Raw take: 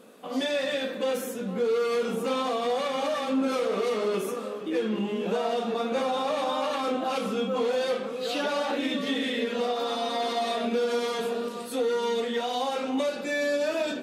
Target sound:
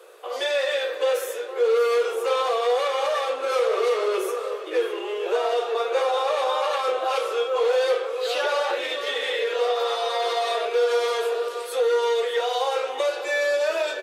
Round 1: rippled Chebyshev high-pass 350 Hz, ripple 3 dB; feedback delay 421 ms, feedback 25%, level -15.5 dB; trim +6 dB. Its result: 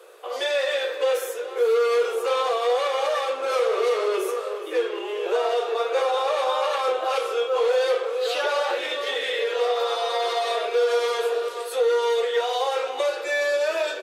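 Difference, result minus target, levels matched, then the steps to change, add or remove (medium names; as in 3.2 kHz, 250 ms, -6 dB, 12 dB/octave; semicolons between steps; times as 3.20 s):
echo 189 ms early
change: feedback delay 610 ms, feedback 25%, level -15.5 dB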